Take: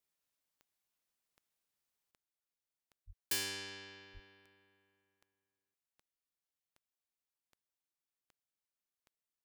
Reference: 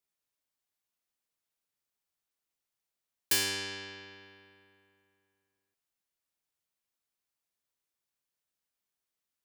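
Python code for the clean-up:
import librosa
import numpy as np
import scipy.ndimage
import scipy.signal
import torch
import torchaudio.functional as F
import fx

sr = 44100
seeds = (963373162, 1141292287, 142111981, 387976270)

y = fx.fix_declick_ar(x, sr, threshold=10.0)
y = fx.highpass(y, sr, hz=140.0, slope=24, at=(3.06, 3.18), fade=0.02)
y = fx.highpass(y, sr, hz=140.0, slope=24, at=(4.13, 4.25), fade=0.02)
y = fx.fix_level(y, sr, at_s=2.11, step_db=8.0)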